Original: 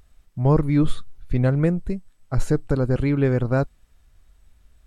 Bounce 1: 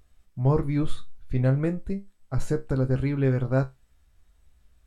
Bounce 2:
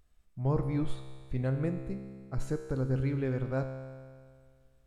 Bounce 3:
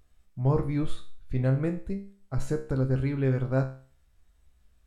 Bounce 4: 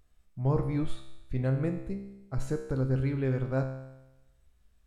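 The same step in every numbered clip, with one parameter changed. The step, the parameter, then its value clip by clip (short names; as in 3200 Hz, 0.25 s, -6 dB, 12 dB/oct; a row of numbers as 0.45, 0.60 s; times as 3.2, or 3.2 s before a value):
resonator, decay: 0.2, 2, 0.43, 0.98 s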